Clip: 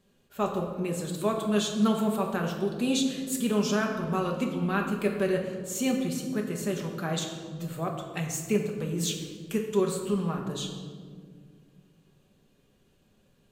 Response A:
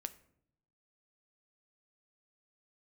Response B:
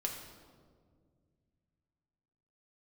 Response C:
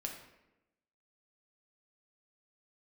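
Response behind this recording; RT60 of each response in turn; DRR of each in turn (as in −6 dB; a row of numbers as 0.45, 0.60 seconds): B; 0.70, 1.9, 0.95 seconds; 11.0, 0.5, 1.0 decibels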